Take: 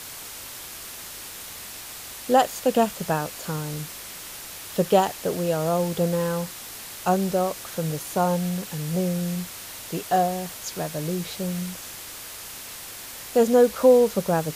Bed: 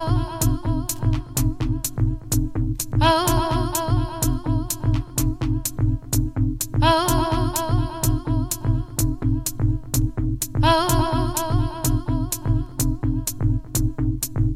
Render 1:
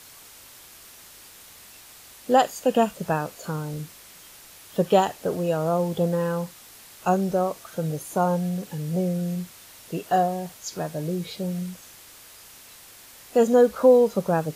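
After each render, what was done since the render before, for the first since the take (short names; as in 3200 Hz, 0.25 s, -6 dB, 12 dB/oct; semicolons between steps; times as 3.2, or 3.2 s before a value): noise print and reduce 9 dB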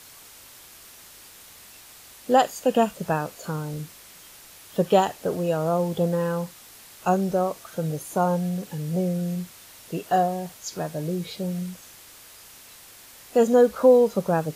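nothing audible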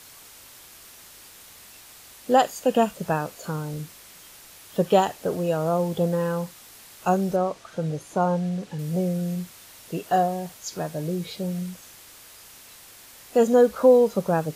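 7.36–8.79 air absorption 62 m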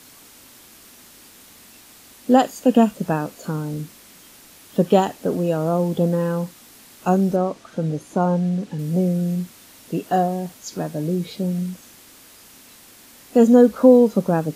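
bell 250 Hz +11 dB 1 oct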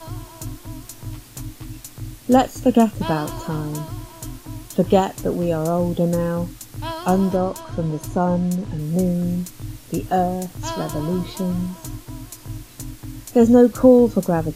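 add bed -12 dB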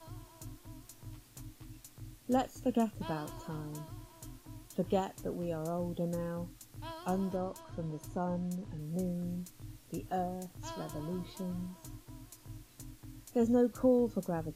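gain -16 dB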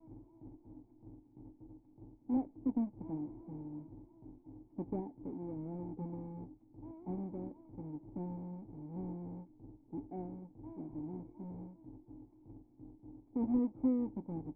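half-waves squared off; vocal tract filter u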